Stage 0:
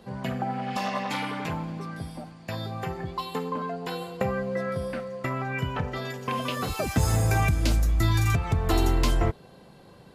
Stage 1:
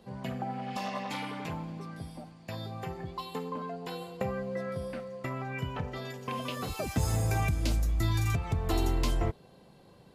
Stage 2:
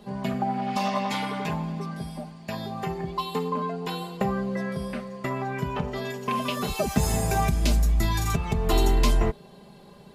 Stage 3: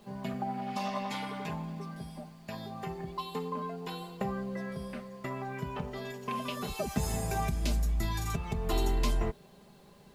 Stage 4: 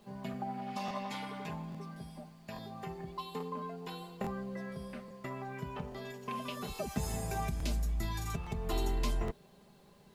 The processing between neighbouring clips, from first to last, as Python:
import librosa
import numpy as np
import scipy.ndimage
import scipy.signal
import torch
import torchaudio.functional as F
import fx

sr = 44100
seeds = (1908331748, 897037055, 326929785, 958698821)

y1 = fx.peak_eq(x, sr, hz=1500.0, db=-3.5, octaves=0.77)
y1 = y1 * librosa.db_to_amplitude(-5.5)
y2 = y1 + 0.66 * np.pad(y1, (int(4.9 * sr / 1000.0), 0))[:len(y1)]
y2 = y2 * librosa.db_to_amplitude(6.0)
y3 = fx.dmg_noise_colour(y2, sr, seeds[0], colour='pink', level_db=-58.0)
y3 = y3 * librosa.db_to_amplitude(-8.0)
y4 = fx.buffer_crackle(y3, sr, first_s=0.86, period_s=0.84, block=1024, kind='repeat')
y4 = y4 * librosa.db_to_amplitude(-4.0)